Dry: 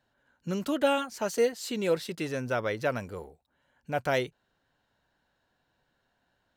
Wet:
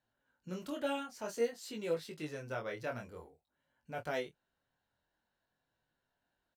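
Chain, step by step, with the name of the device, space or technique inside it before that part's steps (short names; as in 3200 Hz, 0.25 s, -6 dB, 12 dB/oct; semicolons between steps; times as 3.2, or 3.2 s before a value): double-tracked vocal (doubler 26 ms -12 dB; chorus 0.52 Hz, delay 18 ms, depth 6.8 ms); gain -7.5 dB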